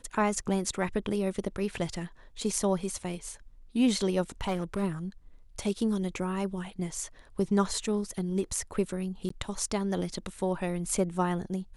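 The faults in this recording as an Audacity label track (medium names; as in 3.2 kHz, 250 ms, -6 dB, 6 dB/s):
4.410000	4.840000	clipped -25 dBFS
9.290000	9.300000	dropout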